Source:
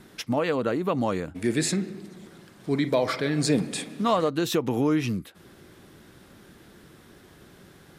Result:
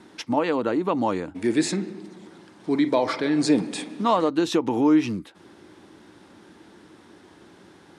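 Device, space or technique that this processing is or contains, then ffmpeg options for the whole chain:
car door speaker: -af "highpass=100,equalizer=f=140:t=q:w=4:g=-8,equalizer=f=310:t=q:w=4:g=7,equalizer=f=900:t=q:w=4:g=8,equalizer=f=7500:t=q:w=4:g=-3,lowpass=f=9300:w=0.5412,lowpass=f=9300:w=1.3066"

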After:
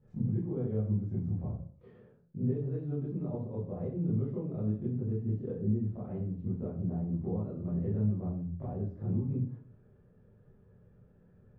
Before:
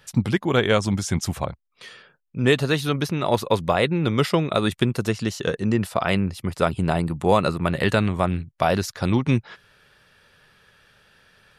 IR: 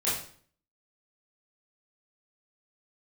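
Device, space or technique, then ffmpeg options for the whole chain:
television next door: -filter_complex "[0:a]acompressor=threshold=0.02:ratio=5,lowpass=290[s0];[1:a]atrim=start_sample=2205[s1];[s0][s1]afir=irnorm=-1:irlink=0,volume=0.631"

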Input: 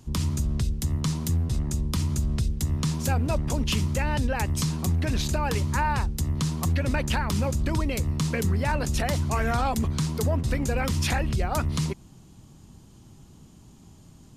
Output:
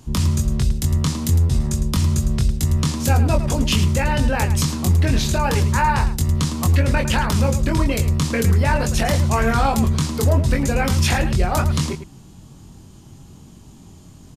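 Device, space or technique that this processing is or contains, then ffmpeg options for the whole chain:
slapback doubling: -filter_complex "[0:a]asplit=3[s0][s1][s2];[s1]adelay=22,volume=0.596[s3];[s2]adelay=107,volume=0.282[s4];[s0][s3][s4]amix=inputs=3:normalize=0,volume=1.88"

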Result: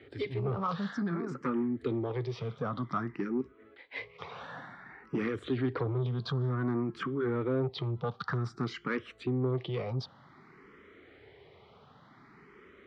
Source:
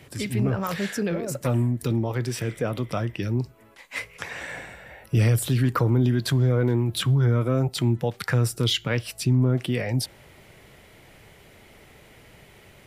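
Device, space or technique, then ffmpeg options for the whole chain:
barber-pole phaser into a guitar amplifier: -filter_complex "[0:a]asplit=2[s0][s1];[s1]afreqshift=0.54[s2];[s0][s2]amix=inputs=2:normalize=1,asoftclip=type=tanh:threshold=0.0708,highpass=90,equalizer=f=110:t=q:w=4:g=-3,equalizer=f=270:t=q:w=4:g=4,equalizer=f=410:t=q:w=4:g=7,equalizer=f=600:t=q:w=4:g=-5,equalizer=f=1200:t=q:w=4:g=10,equalizer=f=2700:t=q:w=4:g=-8,lowpass=f=3900:w=0.5412,lowpass=f=3900:w=1.3066,volume=0.708"

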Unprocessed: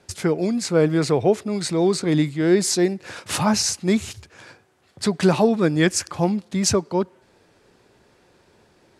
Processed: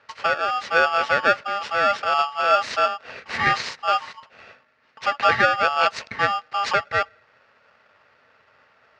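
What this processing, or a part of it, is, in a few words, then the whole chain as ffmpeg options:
ring modulator pedal into a guitar cabinet: -filter_complex "[0:a]aeval=exprs='val(0)*sgn(sin(2*PI*1000*n/s))':c=same,highpass=100,equalizer=f=170:t=q:w=4:g=-5,equalizer=f=320:t=q:w=4:g=-10,equalizer=f=730:t=q:w=4:g=-5,equalizer=f=1900:t=q:w=4:g=6,equalizer=f=3400:t=q:w=4:g=-9,lowpass=f=4100:w=0.5412,lowpass=f=4100:w=1.3066,asettb=1/sr,asplit=3[s0][s1][s2];[s0]atrim=end=5.194[s3];[s1]atrim=start=5.19:end=5.7,asetpts=PTS-STARTPTS,afade=t=in:d=0.004:c=qsin,afade=t=out:st=0.506:d=0.004:c=qsin,lowpass=11000[s4];[s2]atrim=start=5.696[s5];[s3][s4]acrossfade=d=0.004:c1=hsin:c2=qsin[s6];[s6][s5]acrossfade=d=0.004:c1=qsin:c2=hsin"

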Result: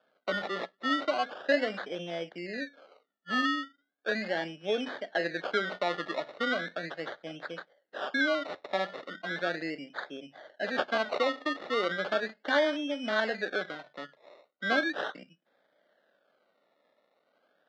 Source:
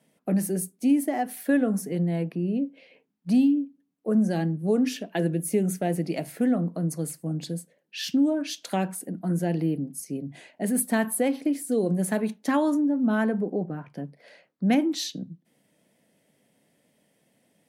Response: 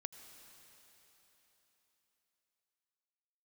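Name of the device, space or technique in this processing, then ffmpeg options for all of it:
circuit-bent sampling toy: -af "acrusher=samples=22:mix=1:aa=0.000001:lfo=1:lforange=13.2:lforate=0.37,highpass=570,equalizer=f=590:t=q:w=4:g=6,equalizer=f=990:t=q:w=4:g=-8,equalizer=f=1600:t=q:w=4:g=8,equalizer=f=2500:t=q:w=4:g=-9,equalizer=f=3700:t=q:w=4:g=3,lowpass=f=4000:w=0.5412,lowpass=f=4000:w=1.3066"

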